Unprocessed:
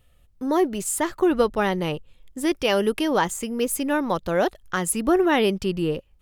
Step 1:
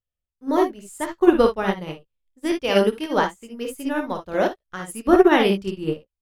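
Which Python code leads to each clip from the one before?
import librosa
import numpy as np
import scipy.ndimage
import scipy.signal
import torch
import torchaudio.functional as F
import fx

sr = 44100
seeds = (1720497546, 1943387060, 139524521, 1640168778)

y = fx.high_shelf(x, sr, hz=7000.0, db=-4.5)
y = fx.room_early_taps(y, sr, ms=(26, 56, 71), db=(-9.5, -4.5, -7.5))
y = fx.upward_expand(y, sr, threshold_db=-39.0, expansion=2.5)
y = F.gain(torch.from_numpy(y), 5.5).numpy()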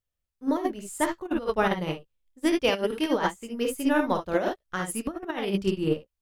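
y = fx.over_compress(x, sr, threshold_db=-22.0, ratio=-0.5)
y = F.gain(torch.from_numpy(y), -2.0).numpy()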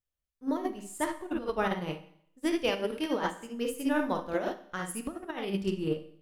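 y = fx.rev_schroeder(x, sr, rt60_s=0.66, comb_ms=30, drr_db=12.0)
y = F.gain(torch.from_numpy(y), -5.5).numpy()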